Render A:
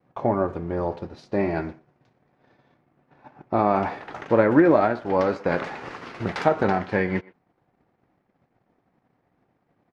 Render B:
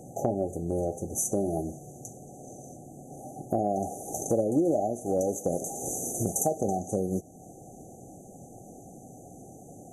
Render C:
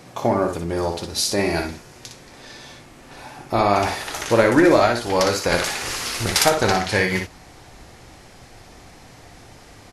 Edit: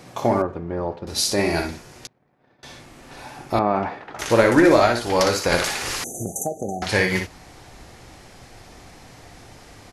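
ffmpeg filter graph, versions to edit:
-filter_complex "[0:a]asplit=3[s0][s1][s2];[2:a]asplit=5[s3][s4][s5][s6][s7];[s3]atrim=end=0.422[s8];[s0]atrim=start=0.418:end=1.072[s9];[s4]atrim=start=1.068:end=2.072[s10];[s1]atrim=start=2.068:end=2.632[s11];[s5]atrim=start=2.628:end=3.592[s12];[s2]atrim=start=3.588:end=4.192[s13];[s6]atrim=start=4.188:end=6.042[s14];[1:a]atrim=start=6.038:end=6.822[s15];[s7]atrim=start=6.818[s16];[s8][s9]acrossfade=d=0.004:c1=hsin:c2=hsin[s17];[s17][s10]acrossfade=d=0.004:c1=hsin:c2=hsin[s18];[s18][s11]acrossfade=d=0.004:c1=hsin:c2=hsin[s19];[s19][s12]acrossfade=d=0.004:c1=hsin:c2=hsin[s20];[s20][s13]acrossfade=d=0.004:c1=hsin:c2=hsin[s21];[s21][s14]acrossfade=d=0.004:c1=hsin:c2=hsin[s22];[s22][s15]acrossfade=d=0.004:c1=hsin:c2=hsin[s23];[s23][s16]acrossfade=d=0.004:c1=hsin:c2=hsin"

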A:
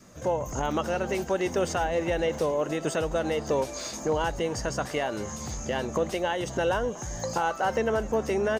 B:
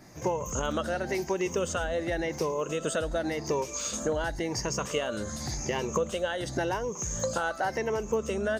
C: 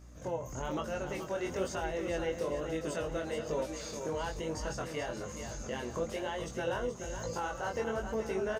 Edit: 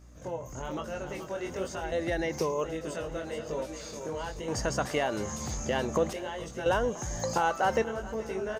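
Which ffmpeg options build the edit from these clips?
-filter_complex "[0:a]asplit=2[s0][s1];[2:a]asplit=4[s2][s3][s4][s5];[s2]atrim=end=1.922[s6];[1:a]atrim=start=1.918:end=2.642[s7];[s3]atrim=start=2.638:end=4.482[s8];[s0]atrim=start=4.478:end=6.132[s9];[s4]atrim=start=6.128:end=6.662[s10];[s1]atrim=start=6.658:end=7.822[s11];[s5]atrim=start=7.818[s12];[s6][s7]acrossfade=d=0.004:c1=hsin:c2=hsin[s13];[s13][s8]acrossfade=d=0.004:c1=hsin:c2=hsin[s14];[s14][s9]acrossfade=d=0.004:c1=hsin:c2=hsin[s15];[s15][s10]acrossfade=d=0.004:c1=hsin:c2=hsin[s16];[s16][s11]acrossfade=d=0.004:c1=hsin:c2=hsin[s17];[s17][s12]acrossfade=d=0.004:c1=hsin:c2=hsin"

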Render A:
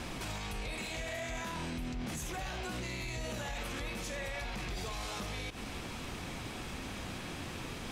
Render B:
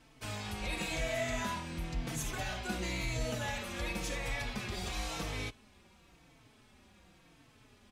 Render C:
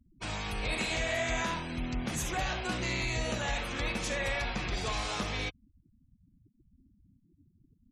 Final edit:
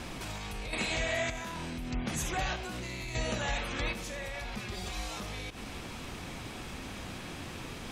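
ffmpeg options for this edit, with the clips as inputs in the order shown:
-filter_complex "[2:a]asplit=3[s0][s1][s2];[0:a]asplit=5[s3][s4][s5][s6][s7];[s3]atrim=end=0.732[s8];[s0]atrim=start=0.728:end=1.302[s9];[s4]atrim=start=1.298:end=1.912[s10];[s1]atrim=start=1.908:end=2.562[s11];[s5]atrim=start=2.558:end=3.152[s12];[s2]atrim=start=3.148:end=3.932[s13];[s6]atrim=start=3.928:end=4.572[s14];[1:a]atrim=start=4.568:end=5.172[s15];[s7]atrim=start=5.168[s16];[s8][s9]acrossfade=d=0.004:c1=hsin:c2=hsin[s17];[s17][s10]acrossfade=d=0.004:c1=hsin:c2=hsin[s18];[s18][s11]acrossfade=d=0.004:c1=hsin:c2=hsin[s19];[s19][s12]acrossfade=d=0.004:c1=hsin:c2=hsin[s20];[s20][s13]acrossfade=d=0.004:c1=hsin:c2=hsin[s21];[s21][s14]acrossfade=d=0.004:c1=hsin:c2=hsin[s22];[s22][s15]acrossfade=d=0.004:c1=hsin:c2=hsin[s23];[s23][s16]acrossfade=d=0.004:c1=hsin:c2=hsin"

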